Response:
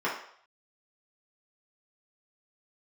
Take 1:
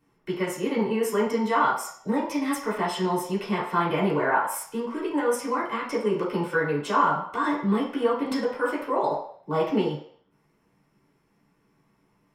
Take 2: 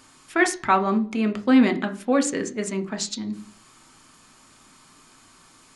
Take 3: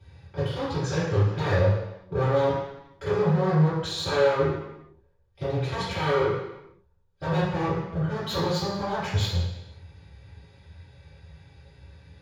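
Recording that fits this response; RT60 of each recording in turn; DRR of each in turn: 1; 0.60 s, 0.45 s, 0.90 s; -6.5 dB, 6.5 dB, -16.5 dB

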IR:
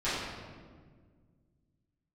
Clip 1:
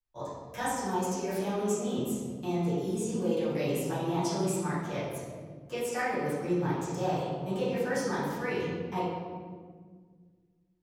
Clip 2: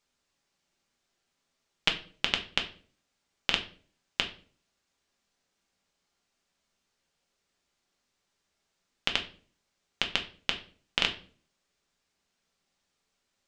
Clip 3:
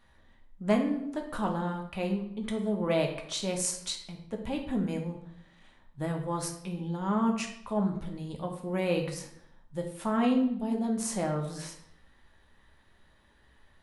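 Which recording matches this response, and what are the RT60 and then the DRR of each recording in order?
1; 1.7 s, 0.45 s, 0.75 s; -14.0 dB, 3.0 dB, 1.5 dB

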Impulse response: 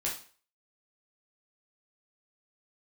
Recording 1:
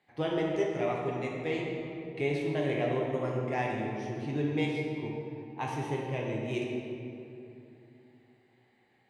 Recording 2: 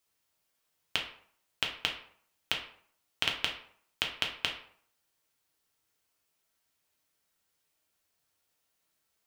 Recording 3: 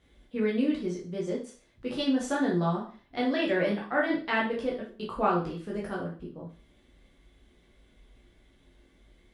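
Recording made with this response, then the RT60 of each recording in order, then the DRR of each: 3; 2.8 s, 0.60 s, 0.40 s; -2.5 dB, 0.5 dB, -5.0 dB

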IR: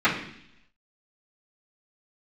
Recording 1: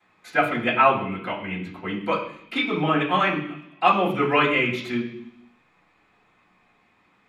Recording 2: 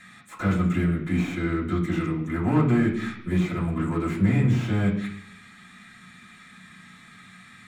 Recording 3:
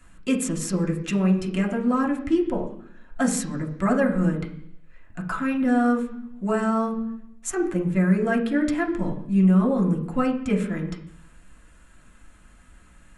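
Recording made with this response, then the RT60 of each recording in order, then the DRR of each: 1; 0.70 s, 0.70 s, 0.70 s; -17.5 dB, -8.0 dB, -1.0 dB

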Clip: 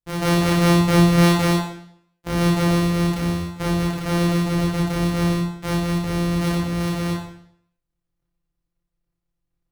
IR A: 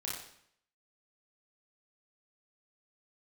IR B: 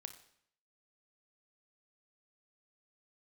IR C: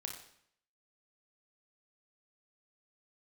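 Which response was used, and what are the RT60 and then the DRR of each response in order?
A; 0.65 s, 0.65 s, 0.65 s; -5.0 dB, 8.5 dB, 1.5 dB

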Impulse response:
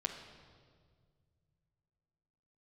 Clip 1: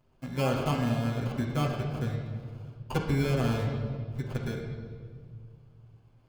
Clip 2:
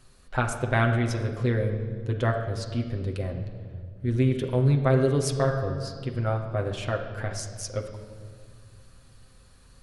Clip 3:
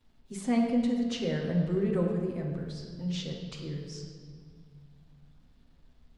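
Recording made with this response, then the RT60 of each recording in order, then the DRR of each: 2; 1.9 s, 1.9 s, 1.9 s; -8.0 dB, 0.5 dB, -12.5 dB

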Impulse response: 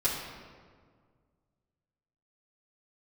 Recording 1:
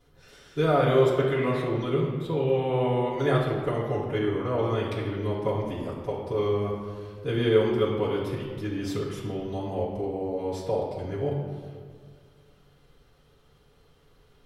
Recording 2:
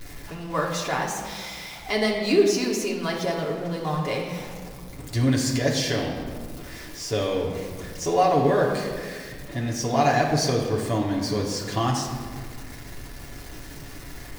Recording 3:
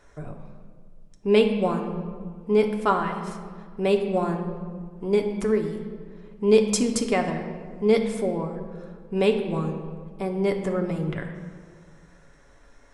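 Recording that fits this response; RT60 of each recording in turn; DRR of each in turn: 1; 1.8 s, 1.8 s, 1.8 s; -10.5 dB, -2.5 dB, 2.5 dB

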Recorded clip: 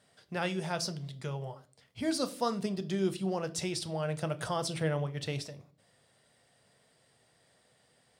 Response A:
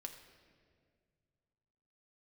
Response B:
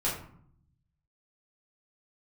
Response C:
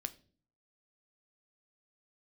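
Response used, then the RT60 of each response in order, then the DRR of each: C; 2.0 s, 0.60 s, 0.45 s; 4.0 dB, -7.5 dB, 10.0 dB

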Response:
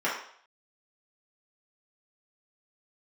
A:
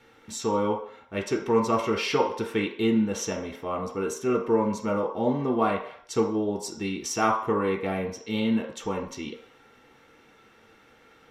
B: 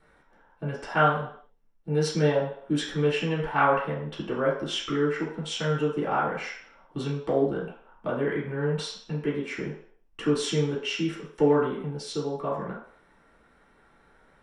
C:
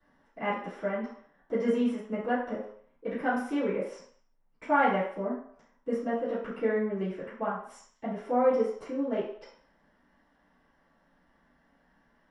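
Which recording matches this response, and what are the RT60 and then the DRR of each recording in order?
B; 0.60 s, 0.60 s, 0.60 s; 1.0 dB, -7.5 dB, -16.0 dB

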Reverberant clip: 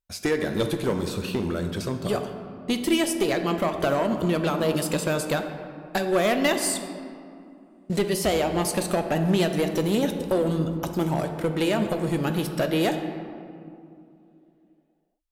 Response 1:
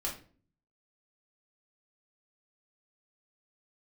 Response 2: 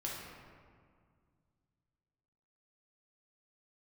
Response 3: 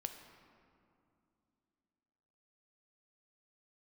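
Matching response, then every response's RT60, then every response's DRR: 3; 0.45 s, 2.0 s, 2.6 s; -3.5 dB, -4.5 dB, 6.0 dB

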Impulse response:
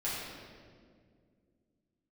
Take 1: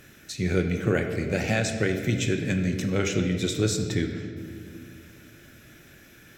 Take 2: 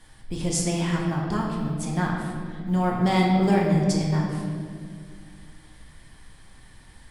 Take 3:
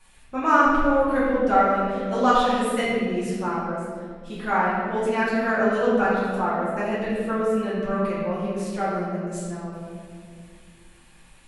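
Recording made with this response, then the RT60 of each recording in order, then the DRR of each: 3; 2.2 s, 2.1 s, 2.1 s; 4.0 dB, -3.0 dB, -9.5 dB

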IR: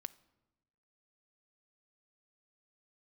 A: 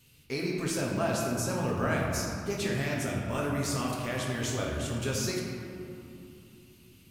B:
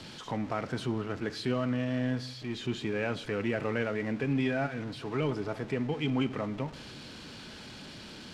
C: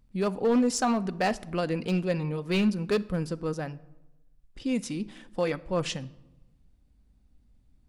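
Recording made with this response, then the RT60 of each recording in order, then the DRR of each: C; 2.9 s, 1.4 s, 1.0 s; -3.5 dB, 13.0 dB, 13.5 dB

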